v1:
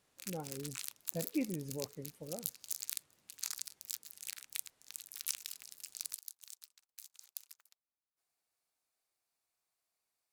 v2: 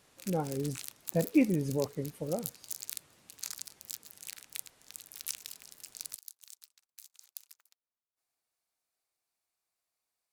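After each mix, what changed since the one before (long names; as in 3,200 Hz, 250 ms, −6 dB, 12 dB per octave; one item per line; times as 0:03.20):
speech +10.5 dB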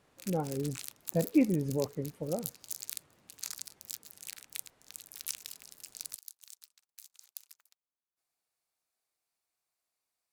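speech: add high-shelf EQ 3,000 Hz −12 dB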